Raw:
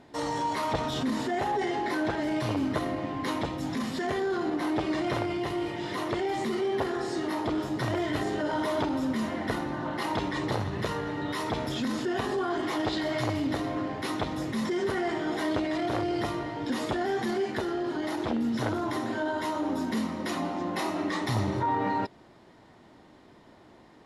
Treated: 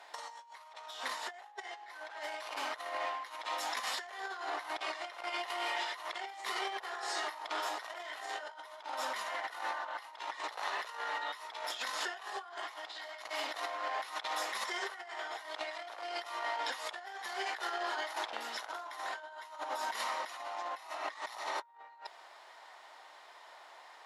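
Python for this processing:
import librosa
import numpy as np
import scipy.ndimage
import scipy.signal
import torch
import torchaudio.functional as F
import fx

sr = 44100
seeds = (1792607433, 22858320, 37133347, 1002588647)

y = scipy.signal.sosfilt(scipy.signal.butter(4, 730.0, 'highpass', fs=sr, output='sos'), x)
y = fx.over_compress(y, sr, threshold_db=-41.0, ratio=-0.5)
y = F.gain(torch.from_numpy(y), 1.0).numpy()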